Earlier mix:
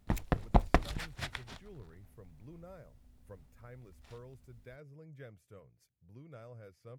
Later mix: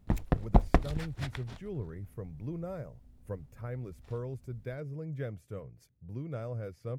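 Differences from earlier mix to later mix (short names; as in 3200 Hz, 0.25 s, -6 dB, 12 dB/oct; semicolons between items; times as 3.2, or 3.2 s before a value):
speech +10.5 dB; master: add tilt shelf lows +4 dB, about 750 Hz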